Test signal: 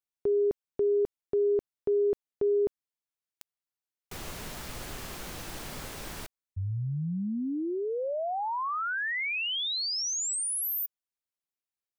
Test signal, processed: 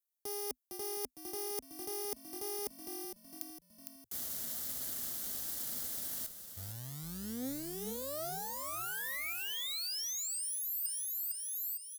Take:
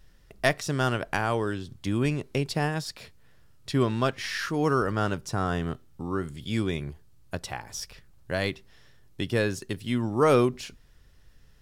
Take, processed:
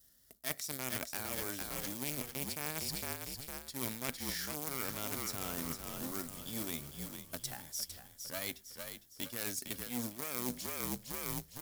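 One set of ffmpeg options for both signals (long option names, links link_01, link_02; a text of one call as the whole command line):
ffmpeg -i in.wav -filter_complex "[0:a]acrusher=bits=4:mode=log:mix=0:aa=0.000001,equalizer=frequency=250:width_type=o:width=0.33:gain=11,equalizer=frequency=630:width_type=o:width=0.33:gain=5,equalizer=frequency=1000:width_type=o:width=0.33:gain=-4,equalizer=frequency=2500:width_type=o:width=0.33:gain=-12,equalizer=frequency=12500:width_type=o:width=0.33:gain=5,aeval=exprs='0.562*(cos(1*acos(clip(val(0)/0.562,-1,1)))-cos(1*PI/2))+0.158*(cos(3*acos(clip(val(0)/0.562,-1,1)))-cos(3*PI/2))+0.02*(cos(6*acos(clip(val(0)/0.562,-1,1)))-cos(6*PI/2))':channel_layout=same,highpass=frequency=45:width=0.5412,highpass=frequency=45:width=1.3066,asplit=6[link_01][link_02][link_03][link_04][link_05][link_06];[link_02]adelay=457,afreqshift=-46,volume=-10dB[link_07];[link_03]adelay=914,afreqshift=-92,volume=-16.2dB[link_08];[link_04]adelay=1371,afreqshift=-138,volume=-22.4dB[link_09];[link_05]adelay=1828,afreqshift=-184,volume=-28.6dB[link_10];[link_06]adelay=2285,afreqshift=-230,volume=-34.8dB[link_11];[link_01][link_07][link_08][link_09][link_10][link_11]amix=inputs=6:normalize=0,crystalizer=i=7:c=0,adynamicequalizer=threshold=0.00126:dfrequency=2300:dqfactor=6:tfrequency=2300:tqfactor=6:attack=5:release=100:ratio=0.375:range=4:mode=boostabove:tftype=bell,areverse,acompressor=threshold=-37dB:ratio=16:attack=31:release=92:knee=1:detection=rms,areverse" out.wav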